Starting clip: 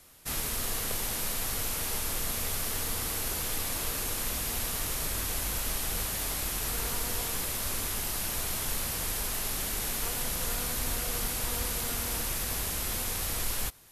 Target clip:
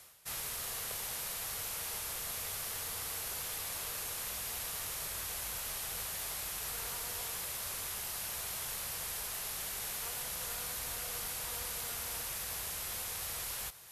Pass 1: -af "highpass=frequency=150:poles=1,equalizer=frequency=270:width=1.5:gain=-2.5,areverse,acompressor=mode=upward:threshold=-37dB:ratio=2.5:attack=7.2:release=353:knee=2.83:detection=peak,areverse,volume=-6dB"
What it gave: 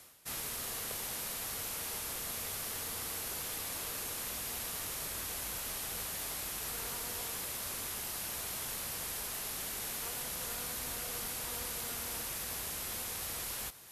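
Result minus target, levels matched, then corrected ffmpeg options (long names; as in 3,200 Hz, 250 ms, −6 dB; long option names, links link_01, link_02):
250 Hz band +6.0 dB
-af "highpass=frequency=150:poles=1,equalizer=frequency=270:width=1.5:gain=-12,areverse,acompressor=mode=upward:threshold=-37dB:ratio=2.5:attack=7.2:release=353:knee=2.83:detection=peak,areverse,volume=-6dB"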